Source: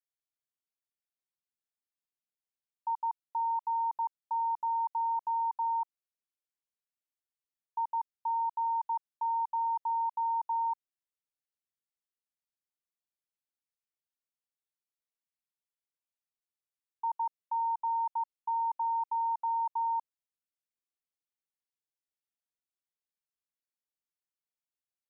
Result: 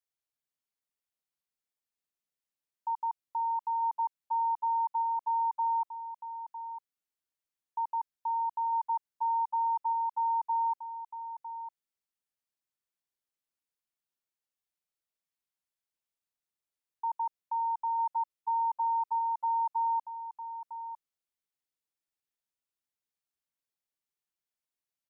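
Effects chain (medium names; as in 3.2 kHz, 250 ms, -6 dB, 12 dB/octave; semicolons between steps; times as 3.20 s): delay 953 ms -9.5 dB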